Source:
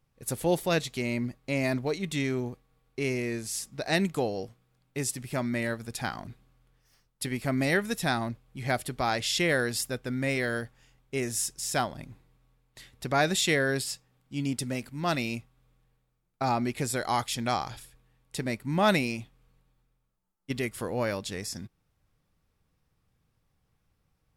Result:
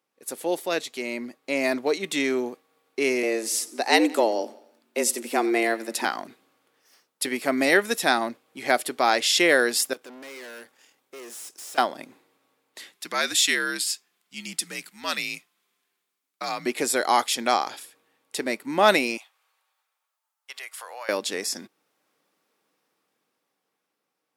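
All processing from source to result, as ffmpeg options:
-filter_complex "[0:a]asettb=1/sr,asplit=3[a][b][c];[a]atrim=end=3.234[d];[b]atrim=start=3.23:end=6.05,asetpts=PTS-STARTPTS,afade=t=in:d=0.004:c=qsin,afade=t=out:st=2.816:d=0.004:c=qsin,afreqshift=110,aecho=1:1:89|178|267|356:0.1|0.051|0.026|0.0133,atrim=end_sample=124362[e];[c]atrim=start=6.046[f];[d][e]acrossfade=d=0.004:c1=hsin:c2=qsin[g];[g][f]acrossfade=d=0.004:c1=qsin:c2=hsin,asettb=1/sr,asplit=3[h][i][j];[h]atrim=end=9.934[k];[i]atrim=start=9.93:end=11.78,asetpts=PTS-STARTPTS,afade=t=in:d=0.004:c=qsin,afade=t=out:st=1.846:d=0.004:c=qsin,highshelf=f=4.8k:g=6,acompressor=threshold=-42dB:ratio=1.5:attack=3.2:release=140:knee=1:detection=peak,aeval=exprs='(tanh(200*val(0)+0.75)-tanh(0.75))/200':c=same[l];[j]atrim=start=11.776[m];[k][l]acrossfade=d=0.004:c1=hsin:c2=qsin[n];[n][m]acrossfade=d=0.004:c1=qsin:c2=hsin,asettb=1/sr,asplit=3[o][p][q];[o]atrim=end=12.924[r];[p]atrim=start=12.92:end=16.66,asetpts=PTS-STARTPTS,afade=t=in:d=0.004:c=qsin,afade=t=out:st=3.736:d=0.004:c=qsin,equalizer=f=590:t=o:w=2.1:g=-14.5,afreqshift=-74[s];[q]atrim=start=16.656[t];[r][s]acrossfade=d=0.004:c1=hsin:c2=qsin[u];[u][t]acrossfade=d=0.004:c1=qsin:c2=hsin,asettb=1/sr,asplit=3[v][w][x];[v]atrim=end=19.174[y];[w]atrim=start=19.17:end=21.09,asetpts=PTS-STARTPTS,afade=t=in:d=0.004:c=qsin,afade=t=out:st=1.916:d=0.004:c=qsin,highpass=f=760:w=0.5412,highpass=f=760:w=1.3066,acompressor=threshold=-44dB:ratio=3:attack=3.2:release=140:knee=1:detection=peak[z];[x]atrim=start=21.086[aa];[y][z]acrossfade=d=0.004:c1=hsin:c2=qsin[ab];[ab][aa]acrossfade=d=0.004:c1=qsin:c2=hsin,highpass=f=280:w=0.5412,highpass=f=280:w=1.3066,dynaudnorm=f=140:g=21:m=8dB"

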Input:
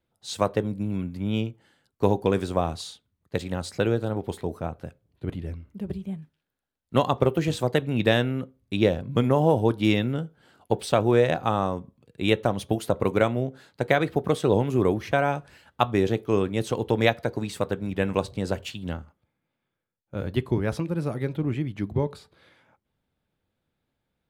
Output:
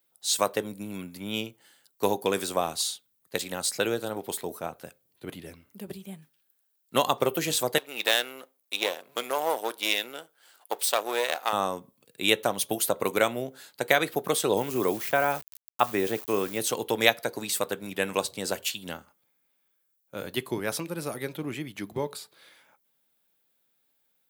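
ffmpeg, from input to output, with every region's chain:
-filter_complex "[0:a]asettb=1/sr,asplit=3[a][b][c];[a]atrim=end=7.784[d];[b]atrim=start=7.78:end=11.53,asetpts=PTS-STARTPTS,afade=t=in:d=0.004:c=qsin,afade=t=out:st=3.746:d=0.004:c=qsin,aeval=exprs='if(lt(val(0),0),0.447*val(0),val(0))':c=same,highpass=530[e];[c]atrim=start=11.526[f];[d][e]acrossfade=d=0.004:c1=hsin:c2=qsin[g];[g][f]acrossfade=d=0.004:c1=qsin:c2=hsin,asettb=1/sr,asplit=3[h][i][j];[h]atrim=end=14.574[k];[i]atrim=start=14.57:end=16.6,asetpts=PTS-STARTPTS,afade=t=in:d=0.004:c=qsin,afade=t=out:st=2.026:d=0.004:c=qsin,acrossover=split=2600[l][m];[m]acompressor=threshold=-50dB:ratio=4:attack=1:release=60[n];[l][n]amix=inputs=2:normalize=0,aeval=exprs='val(0)*gte(abs(val(0)),0.00708)':c=same[o];[j]atrim=start=16.596[p];[k][o]acrossfade=d=0.004:c1=hsin:c2=qsin[q];[q][p]acrossfade=d=0.004:c1=qsin:c2=hsin,highpass=110,aemphasis=mode=production:type=riaa"

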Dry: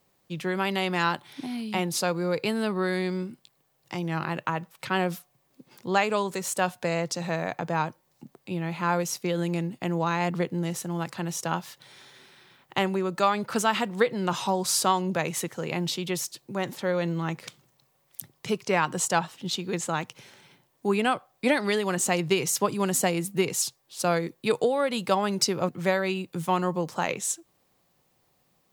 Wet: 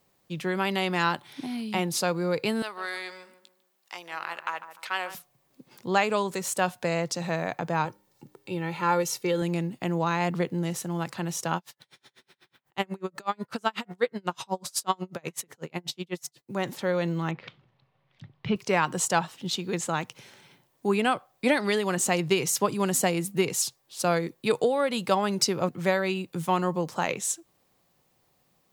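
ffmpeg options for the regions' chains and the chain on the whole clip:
-filter_complex "[0:a]asettb=1/sr,asplit=3[a][b][c];[a]atrim=end=2.624[d];[b]atrim=start=2.62:end=5.15,asetpts=PTS-STARTPTS,afade=t=in:d=0.004:c=qsin,afade=t=out:st=2.526:d=0.004:c=qsin,aeval=exprs='if(lt(val(0),0),0.708*val(0),val(0))':c=same,highpass=870,asplit=2[e][f];[f]adelay=149,lowpass=f=1.2k:p=1,volume=-10dB,asplit=2[g][h];[h]adelay=149,lowpass=f=1.2k:p=1,volume=0.39,asplit=2[i][j];[j]adelay=149,lowpass=f=1.2k:p=1,volume=0.39,asplit=2[k][l];[l]adelay=149,lowpass=f=1.2k:p=1,volume=0.39[m];[e][g][i][k][m]amix=inputs=5:normalize=0,atrim=end_sample=111573[n];[c]atrim=start=5.146[o];[d][n]acrossfade=d=0.004:c1=hsin:c2=qsin[p];[p][o]acrossfade=d=0.004:c1=qsin:c2=hsin,asettb=1/sr,asplit=3[q][r][s];[q]atrim=end=7.854[t];[r]atrim=start=7.85:end=9.42,asetpts=PTS-STARTPTS,afade=t=in:d=0.004:c=qsin,afade=t=out:st=1.566:d=0.004:c=qsin,aecho=1:1:2.2:0.55,atrim=end_sample=69237,bandreject=f=101.3:t=h:w=4,bandreject=f=202.6:t=h:w=4,bandreject=f=303.9:t=h:w=4,bandreject=f=405.2:t=h:w=4[u];[s]atrim=start=9.416[v];[t][u]acrossfade=d=0.004:c1=hsin:c2=qsin[w];[w][v]acrossfade=d=0.004:c1=qsin:c2=hsin,asettb=1/sr,asplit=3[x][y][z];[x]atrim=end=11.574[aa];[y]atrim=start=11.57:end=16.52,asetpts=PTS-STARTPTS,afade=t=in:d=0.004:c=qsin,afade=t=out:st=4.946:d=0.004:c=qsin,bandreject=f=143.9:t=h:w=4,bandreject=f=287.8:t=h:w=4,bandreject=f=431.7:t=h:w=4,bandreject=f=575.6:t=h:w=4,bandreject=f=719.5:t=h:w=4,bandreject=f=863.4:t=h:w=4,bandreject=f=1.0073k:t=h:w=4,bandreject=f=1.1512k:t=h:w=4,bandreject=f=1.2951k:t=h:w=4,bandreject=f=1.439k:t=h:w=4,bandreject=f=1.5829k:t=h:w=4,bandreject=f=1.7268k:t=h:w=4,bandreject=f=1.8707k:t=h:w=4,bandreject=f=2.0146k:t=h:w=4,bandreject=f=2.1585k:t=h:w=4,aeval=exprs='val(0)*pow(10,-36*(0.5-0.5*cos(2*PI*8.1*n/s))/20)':c=same[ab];[z]atrim=start=16.516[ac];[aa][ab]acrossfade=d=0.004:c1=hsin:c2=qsin[ad];[ad][ac]acrossfade=d=0.004:c1=qsin:c2=hsin,asettb=1/sr,asplit=3[ae][af][ag];[ae]atrim=end=17.314[ah];[af]atrim=start=17.31:end=18.56,asetpts=PTS-STARTPTS,afade=t=in:d=0.004:c=qsin,afade=t=out:st=1.246:d=0.004:c=qsin,lowpass=f=3.5k:w=0.5412,lowpass=f=3.5k:w=1.3066,asubboost=boost=10:cutoff=170[ai];[ag]atrim=start=18.556[aj];[ah][ai]acrossfade=d=0.004:c1=hsin:c2=qsin[ak];[ak][aj]acrossfade=d=0.004:c1=qsin:c2=hsin"

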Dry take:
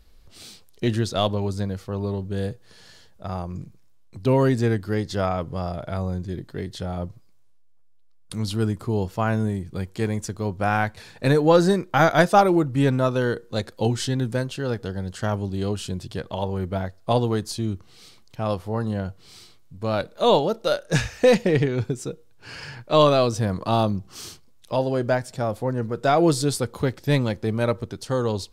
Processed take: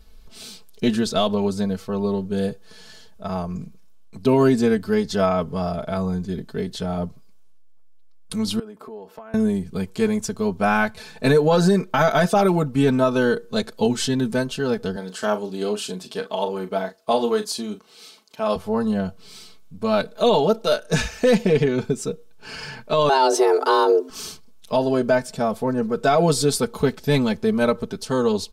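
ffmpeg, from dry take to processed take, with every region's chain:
-filter_complex "[0:a]asettb=1/sr,asplit=3[a][b][c];[a]atrim=end=8.594[d];[b]atrim=start=8.59:end=9.34,asetpts=PTS-STARTPTS,afade=t=in:d=0.004:c=qsin,afade=t=out:st=0.746:d=0.004:c=qsin,highpass=410,equalizer=f=7.1k:w=0.34:g=-14.5,acompressor=threshold=-38dB:ratio=16:attack=3.2:release=140:knee=1:detection=peak[e];[c]atrim=start=9.336[f];[d][e]acrossfade=d=0.004:c1=hsin:c2=qsin[g];[g][f]acrossfade=d=0.004:c1=qsin:c2=hsin,asettb=1/sr,asplit=3[h][i][j];[h]atrim=end=14.964[k];[i]atrim=start=14.96:end=18.56,asetpts=PTS-STARTPTS,afade=t=in:d=0.004:c=qsin,afade=t=out:st=3.596:d=0.004:c=qsin,highpass=300,asplit=2[l][m];[m]adelay=38,volume=-10.5dB[n];[l][n]amix=inputs=2:normalize=0,atrim=end_sample=158760[o];[j]atrim=start=18.556[p];[k][o]acrossfade=d=0.004:c1=hsin:c2=qsin[q];[q][p]acrossfade=d=0.004:c1=qsin:c2=hsin,asettb=1/sr,asplit=3[r][s][t];[r]atrim=end=23.094[u];[s]atrim=start=23.09:end=24.1,asetpts=PTS-STARTPTS,afade=t=in:d=0.004:c=qsin,afade=t=out:st=1.006:d=0.004:c=qsin,acontrast=20,afreqshift=260[v];[t]atrim=start=24.096[w];[u][v]acrossfade=d=0.004:c1=hsin:c2=qsin[x];[x][w]acrossfade=d=0.004:c1=qsin:c2=hsin,bandreject=f=1.9k:w=10,aecho=1:1:4.6:0.84,alimiter=level_in=9.5dB:limit=-1dB:release=50:level=0:latency=1,volume=-7.5dB"

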